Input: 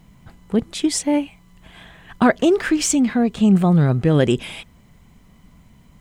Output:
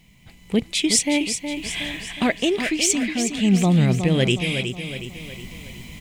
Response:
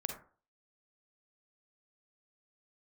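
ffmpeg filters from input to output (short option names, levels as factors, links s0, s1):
-filter_complex "[0:a]highshelf=f=1800:t=q:w=3:g=7.5,dynaudnorm=f=240:g=3:m=5.96,asplit=2[s0][s1];[s1]aecho=0:1:366|732|1098|1464|1830|2196:0.398|0.191|0.0917|0.044|0.0211|0.0101[s2];[s0][s2]amix=inputs=2:normalize=0,volume=0.501"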